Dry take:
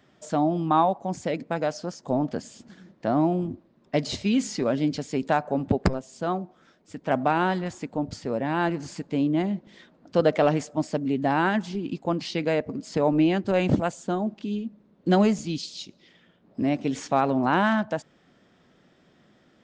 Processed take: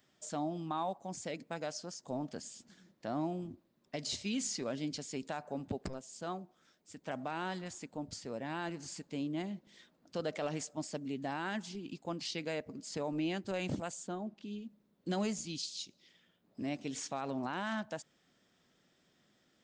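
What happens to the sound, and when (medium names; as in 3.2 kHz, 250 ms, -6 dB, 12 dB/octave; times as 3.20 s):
14.07–14.61 s: low-pass 2.2 kHz -> 3.6 kHz 6 dB/octave
whole clip: pre-emphasis filter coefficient 0.8; peak limiter -26.5 dBFS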